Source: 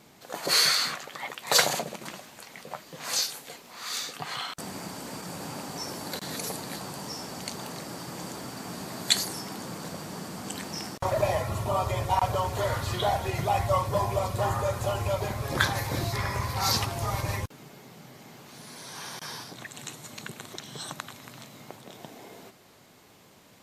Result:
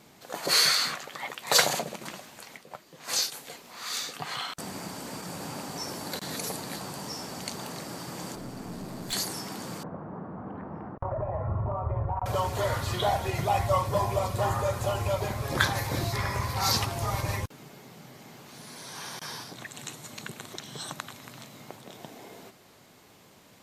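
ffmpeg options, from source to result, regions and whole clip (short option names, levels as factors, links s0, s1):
-filter_complex "[0:a]asettb=1/sr,asplit=3[s0][s1][s2];[s0]atrim=end=2.574[s3];[s1]atrim=start=2.57:end=3.32,asetpts=PTS-STARTPTS,afade=t=in:d=0.004:c=qsin,afade=t=out:st=0.746:d=0.004:c=qsin,agate=range=0.398:threshold=0.0158:ratio=16:release=100:detection=peak,equalizer=f=360:w=4.4:g=5[s4];[s2]atrim=start=3.316[s5];[s3][s4]acrossfade=d=0.004:c1=hsin:c2=qsin[s6];[s6][s5]acrossfade=d=0.004:c1=qsin:c2=hsin,asettb=1/sr,asplit=3[s7][s8][s9];[s7]atrim=end=8.354[s10];[s8]atrim=start=8.35:end=9.13,asetpts=PTS-STARTPTS,afade=t=in:d=0.004:c=qsin,afade=t=out:st=0.776:d=0.004:c=qsin,tiltshelf=f=640:g=5.5,aeval=exprs='(tanh(39.8*val(0)+0.45)-tanh(0.45))/39.8':c=same[s11];[s9]atrim=start=9.126[s12];[s10][s11]acrossfade=d=0.004:c1=hsin:c2=qsin[s13];[s13][s12]acrossfade=d=0.004:c1=qsin:c2=hsin,asettb=1/sr,asplit=3[s14][s15][s16];[s14]atrim=end=9.834[s17];[s15]atrim=start=9.83:end=12.26,asetpts=PTS-STARTPTS,afade=t=in:d=0.004:c=qsin,afade=t=out:st=2.426:d=0.004:c=qsin,lowpass=f=1300:w=0.5412,lowpass=f=1300:w=1.3066,acompressor=threshold=0.0398:ratio=5:attack=3.2:release=140:knee=1:detection=peak,asubboost=boost=3.5:cutoff=140[s18];[s16]atrim=start=12.256[s19];[s17][s18]acrossfade=d=0.004:c1=hsin:c2=qsin[s20];[s20][s19]acrossfade=d=0.004:c1=qsin:c2=hsin"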